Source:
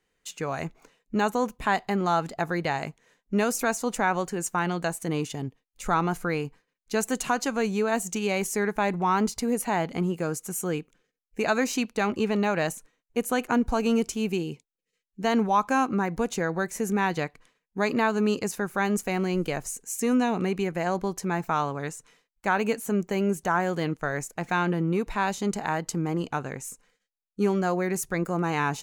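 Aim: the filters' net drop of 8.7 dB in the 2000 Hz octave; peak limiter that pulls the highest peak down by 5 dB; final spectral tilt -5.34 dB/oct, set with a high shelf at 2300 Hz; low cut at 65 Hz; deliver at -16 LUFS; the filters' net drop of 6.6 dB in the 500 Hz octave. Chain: HPF 65 Hz; bell 500 Hz -8 dB; bell 2000 Hz -8.5 dB; high shelf 2300 Hz -6 dB; gain +16 dB; limiter -5 dBFS

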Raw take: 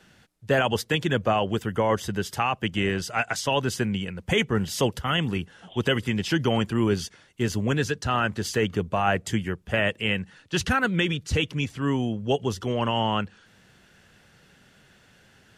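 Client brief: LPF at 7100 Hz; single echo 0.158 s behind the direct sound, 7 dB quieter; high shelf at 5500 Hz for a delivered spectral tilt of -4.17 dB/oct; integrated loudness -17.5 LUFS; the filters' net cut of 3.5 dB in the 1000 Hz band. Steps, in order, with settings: LPF 7100 Hz; bell 1000 Hz -5 dB; high shelf 5500 Hz +3.5 dB; echo 0.158 s -7 dB; gain +8 dB

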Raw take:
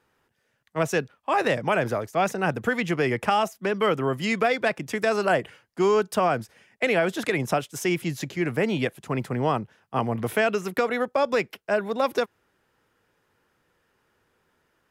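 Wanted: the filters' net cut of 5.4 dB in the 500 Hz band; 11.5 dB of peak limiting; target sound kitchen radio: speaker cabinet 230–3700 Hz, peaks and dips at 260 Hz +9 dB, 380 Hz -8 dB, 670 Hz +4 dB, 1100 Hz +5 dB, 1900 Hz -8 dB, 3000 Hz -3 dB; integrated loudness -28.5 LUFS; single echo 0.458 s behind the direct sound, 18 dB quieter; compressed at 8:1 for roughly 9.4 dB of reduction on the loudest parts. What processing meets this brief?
bell 500 Hz -7.5 dB; compressor 8:1, threshold -30 dBFS; limiter -26.5 dBFS; speaker cabinet 230–3700 Hz, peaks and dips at 260 Hz +9 dB, 380 Hz -8 dB, 670 Hz +4 dB, 1100 Hz +5 dB, 1900 Hz -8 dB, 3000 Hz -3 dB; echo 0.458 s -18 dB; gain +9 dB

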